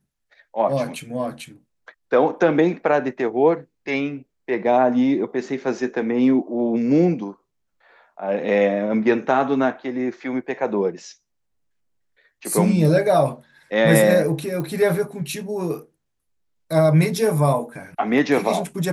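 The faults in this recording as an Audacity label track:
14.600000	14.600000	pop -17 dBFS

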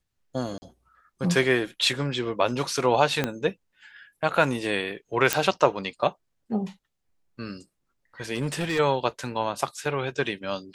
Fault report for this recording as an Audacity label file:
0.580000	0.620000	gap 40 ms
3.240000	3.240000	pop -10 dBFS
5.330000	5.330000	pop
8.340000	8.800000	clipped -22 dBFS

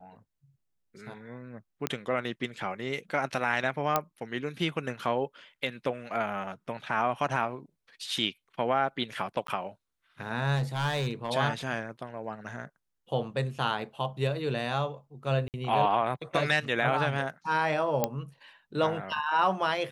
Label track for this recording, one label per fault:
1.870000	1.870000	pop -12 dBFS
3.960000	3.960000	pop -10 dBFS
9.470000	9.480000	gap
10.550000	11.310000	clipped -24.5 dBFS
15.480000	15.540000	gap 58 ms
18.040000	18.040000	pop -10 dBFS

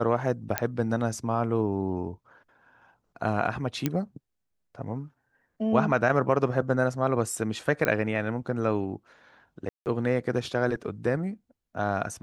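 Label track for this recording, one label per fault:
0.580000	0.580000	pop -7 dBFS
3.860000	3.860000	pop -11 dBFS
7.850000	7.850000	pop -11 dBFS
9.690000	9.860000	gap 0.169 s

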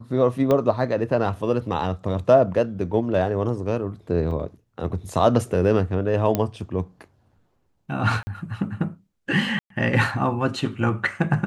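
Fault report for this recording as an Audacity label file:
0.510000	0.510000	pop -10 dBFS
4.310000	4.310000	gap 4.1 ms
6.350000	6.350000	pop -8 dBFS
8.230000	8.270000	gap 40 ms
9.590000	9.700000	gap 0.113 s

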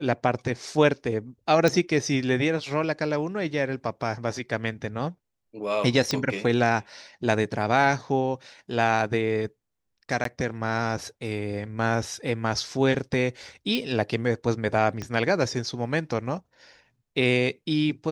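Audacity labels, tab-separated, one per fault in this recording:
1.680000	1.680000	pop
6.110000	6.110000	pop -11 dBFS
10.240000	10.250000	gap 13 ms
13.750000	13.750000	pop -14 dBFS
15.020000	15.020000	pop -19 dBFS

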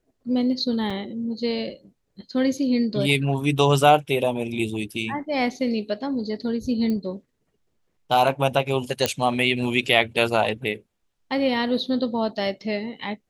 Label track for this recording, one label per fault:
0.900000	0.900000	gap 4.8 ms
6.900000	6.900000	pop -17 dBFS
9.060000	9.060000	pop -4 dBFS

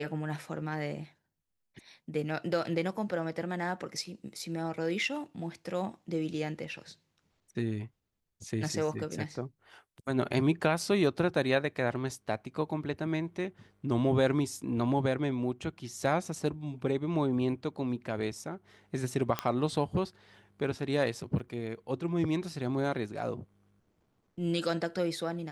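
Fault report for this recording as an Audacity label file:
19.390000	19.390000	pop -14 dBFS
21.390000	21.400000	gap 5.9 ms

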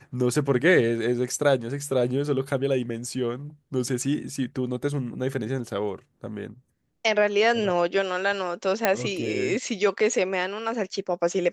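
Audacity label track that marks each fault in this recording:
8.850000	8.850000	pop -5 dBFS

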